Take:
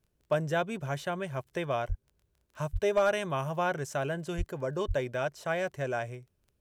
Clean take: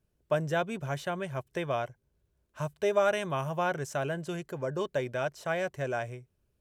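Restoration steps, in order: clip repair -17.5 dBFS; de-click; de-plosive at 1.88/2.72/4.37/4.87 s

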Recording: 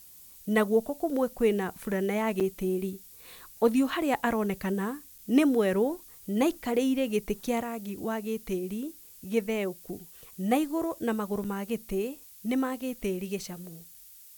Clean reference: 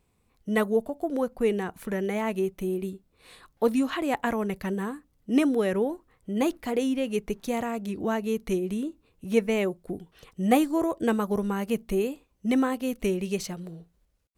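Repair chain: interpolate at 2.40/5.18/11.44 s, 6.4 ms; noise print and reduce 15 dB; gain correction +4.5 dB, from 7.60 s

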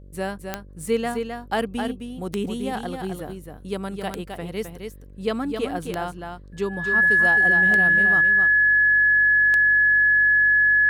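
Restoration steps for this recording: de-click; de-hum 48 Hz, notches 12; band-stop 1.7 kHz, Q 30; inverse comb 262 ms -6 dB

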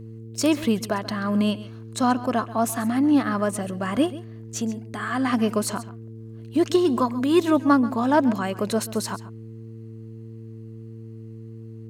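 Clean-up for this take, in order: de-hum 112.3 Hz, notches 4; inverse comb 134 ms -16.5 dB

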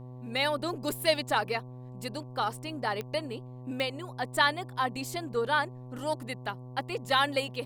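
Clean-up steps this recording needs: de-click; de-hum 125.7 Hz, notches 9

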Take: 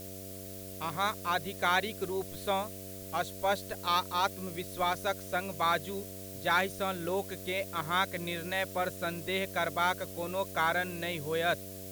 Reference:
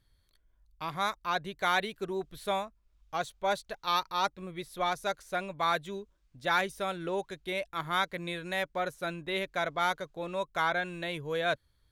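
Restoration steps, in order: de-hum 95.4 Hz, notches 7; noise reduction 24 dB, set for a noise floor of -44 dBFS

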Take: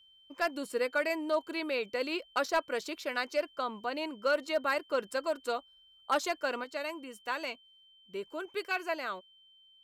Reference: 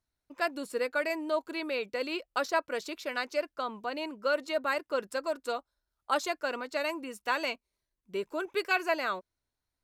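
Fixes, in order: clip repair -20.5 dBFS; band-stop 3.1 kHz, Q 30; trim 0 dB, from 6.64 s +5 dB

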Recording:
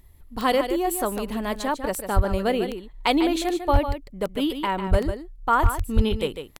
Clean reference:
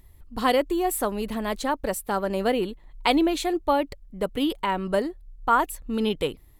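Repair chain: clip repair -9.5 dBFS; de-click; de-plosive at 2.15/3.72/4.90/5.62/5.95 s; inverse comb 149 ms -9 dB

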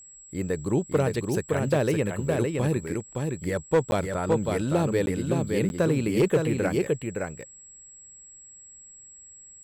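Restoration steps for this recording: clip repair -14.5 dBFS; band-stop 7.7 kHz, Q 30; interpolate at 3.91/5.06/5.69 s, 11 ms; inverse comb 565 ms -4 dB

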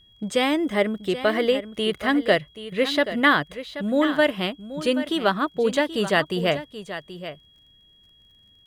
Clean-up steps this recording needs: de-click; band-stop 3.3 kHz, Q 30; inverse comb 780 ms -12.5 dB

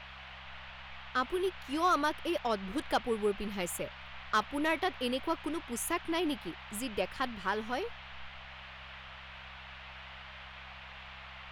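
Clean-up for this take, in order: clip repair -20.5 dBFS; de-click; de-hum 65.7 Hz, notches 3; noise print and reduce 30 dB

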